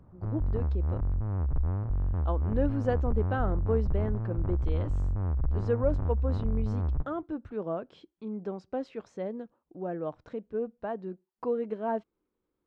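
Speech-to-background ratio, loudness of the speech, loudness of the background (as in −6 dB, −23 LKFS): −3.5 dB, −35.0 LKFS, −31.5 LKFS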